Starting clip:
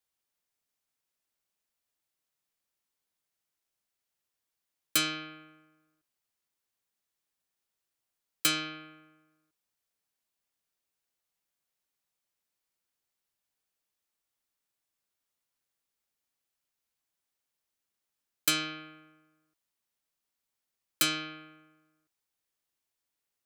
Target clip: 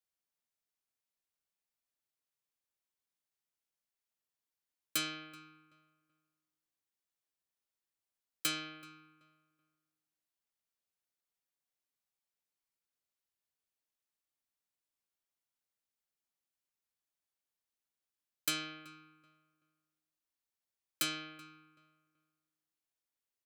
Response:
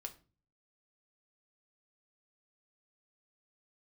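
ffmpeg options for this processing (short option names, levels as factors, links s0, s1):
-filter_complex "[0:a]asplit=2[s0][s1];[s1]adelay=380,lowpass=f=1900:p=1,volume=0.141,asplit=2[s2][s3];[s3]adelay=380,lowpass=f=1900:p=1,volume=0.27,asplit=2[s4][s5];[s5]adelay=380,lowpass=f=1900:p=1,volume=0.27[s6];[s0][s2][s4][s6]amix=inputs=4:normalize=0,volume=0.422"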